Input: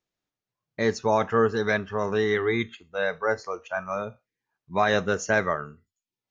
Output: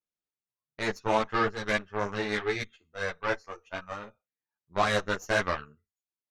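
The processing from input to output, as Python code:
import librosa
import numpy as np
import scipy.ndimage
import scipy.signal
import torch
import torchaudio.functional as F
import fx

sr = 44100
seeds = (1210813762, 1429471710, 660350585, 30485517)

y = fx.dynamic_eq(x, sr, hz=240.0, q=0.81, threshold_db=-39.0, ratio=4.0, max_db=-5)
y = fx.cheby_harmonics(y, sr, harmonics=(5, 6, 7), levels_db=(-31, -24, -18), full_scale_db=-9.5)
y = fx.ensemble(y, sr)
y = F.gain(torch.from_numpy(y), 1.0).numpy()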